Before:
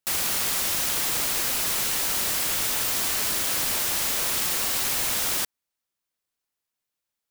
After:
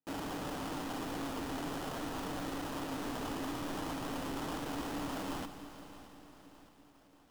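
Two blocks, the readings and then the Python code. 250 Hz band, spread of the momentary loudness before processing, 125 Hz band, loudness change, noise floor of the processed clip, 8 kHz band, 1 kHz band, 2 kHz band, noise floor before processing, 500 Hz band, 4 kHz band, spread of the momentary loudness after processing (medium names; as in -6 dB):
+4.0 dB, 0 LU, -2.5 dB, -17.0 dB, -63 dBFS, -25.5 dB, -5.5 dB, -14.5 dB, -85 dBFS, -3.5 dB, -19.0 dB, 14 LU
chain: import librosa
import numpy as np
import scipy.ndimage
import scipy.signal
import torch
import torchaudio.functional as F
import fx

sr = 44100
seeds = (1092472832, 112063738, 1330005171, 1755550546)

p1 = fx.formant_cascade(x, sr, vowel='i')
p2 = fx.low_shelf(p1, sr, hz=150.0, db=-10.0)
p3 = fx.hum_notches(p2, sr, base_hz=50, count=6)
p4 = p3 + 0.7 * np.pad(p3, (int(6.8 * sr / 1000.0), 0))[:len(p3)]
p5 = fx.cheby_harmonics(p4, sr, harmonics=(4, 7), levels_db=(-21, -30), full_scale_db=-34.5)
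p6 = scipy.signal.sosfilt(scipy.signal.cheby1(2, 1.0, [720.0, 3100.0], 'bandstop', fs=sr, output='sos'), p5)
p7 = fx.sample_hold(p6, sr, seeds[0], rate_hz=2200.0, jitter_pct=20)
p8 = fx.fold_sine(p7, sr, drive_db=15, ceiling_db=-31.5)
p9 = p8 + fx.echo_feedback(p8, sr, ms=617, feedback_pct=57, wet_db=-17.0, dry=0)
p10 = fx.echo_crushed(p9, sr, ms=167, feedback_pct=80, bits=10, wet_db=-14)
y = p10 * 10.0 ** (-4.5 / 20.0)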